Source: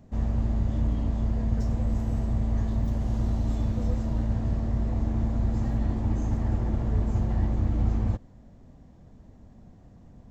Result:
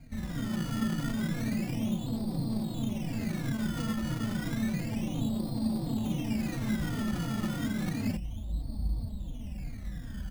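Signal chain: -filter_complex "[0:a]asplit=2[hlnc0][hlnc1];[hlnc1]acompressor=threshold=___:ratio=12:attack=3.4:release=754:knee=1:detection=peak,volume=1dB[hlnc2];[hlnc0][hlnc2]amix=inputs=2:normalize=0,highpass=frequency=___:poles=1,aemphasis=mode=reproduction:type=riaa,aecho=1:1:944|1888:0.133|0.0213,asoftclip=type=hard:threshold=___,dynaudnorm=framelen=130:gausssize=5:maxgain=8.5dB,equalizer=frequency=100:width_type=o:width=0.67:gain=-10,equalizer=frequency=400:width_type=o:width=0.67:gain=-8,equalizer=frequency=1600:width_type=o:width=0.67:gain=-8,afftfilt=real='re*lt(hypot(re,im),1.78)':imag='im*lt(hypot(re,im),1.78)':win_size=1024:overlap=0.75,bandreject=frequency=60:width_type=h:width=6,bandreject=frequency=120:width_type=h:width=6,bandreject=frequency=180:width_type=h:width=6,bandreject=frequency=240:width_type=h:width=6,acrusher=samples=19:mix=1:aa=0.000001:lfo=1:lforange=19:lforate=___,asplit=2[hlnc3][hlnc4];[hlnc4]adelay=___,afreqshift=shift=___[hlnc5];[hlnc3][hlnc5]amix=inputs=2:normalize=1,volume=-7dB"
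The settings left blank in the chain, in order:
-39dB, 61, -9dB, 0.31, 3.7, -2.9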